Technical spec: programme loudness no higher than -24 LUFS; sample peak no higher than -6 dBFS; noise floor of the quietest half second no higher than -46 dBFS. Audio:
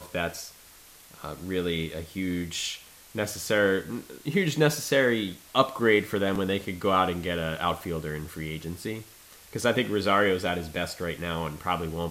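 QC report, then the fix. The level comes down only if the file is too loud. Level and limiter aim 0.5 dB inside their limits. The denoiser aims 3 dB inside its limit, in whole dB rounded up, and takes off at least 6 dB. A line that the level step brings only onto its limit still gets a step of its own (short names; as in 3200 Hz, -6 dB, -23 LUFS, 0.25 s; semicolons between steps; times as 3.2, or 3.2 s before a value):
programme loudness -27.5 LUFS: OK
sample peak -5.5 dBFS: fail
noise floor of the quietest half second -52 dBFS: OK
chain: limiter -6.5 dBFS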